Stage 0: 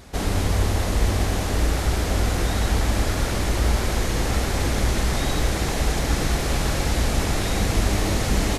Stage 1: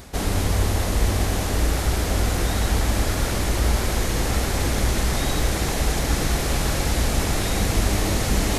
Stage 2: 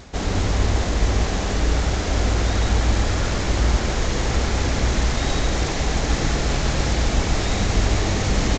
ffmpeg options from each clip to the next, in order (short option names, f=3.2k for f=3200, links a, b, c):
-af "highshelf=f=10k:g=7,areverse,acompressor=mode=upward:threshold=-21dB:ratio=2.5,areverse"
-af "aecho=1:1:141:0.531" -ar 16000 -c:a g722